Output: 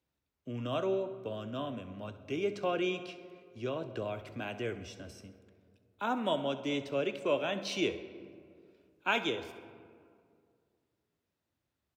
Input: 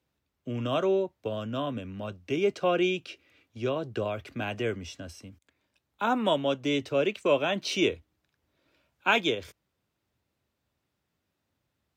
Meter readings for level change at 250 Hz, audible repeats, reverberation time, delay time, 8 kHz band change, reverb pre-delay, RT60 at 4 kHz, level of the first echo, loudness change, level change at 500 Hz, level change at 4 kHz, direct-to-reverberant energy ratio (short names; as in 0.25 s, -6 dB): -6.0 dB, 2, 2.2 s, 66 ms, -6.5 dB, 3 ms, 1.1 s, -16.5 dB, -6.0 dB, -6.0 dB, -6.5 dB, 10.0 dB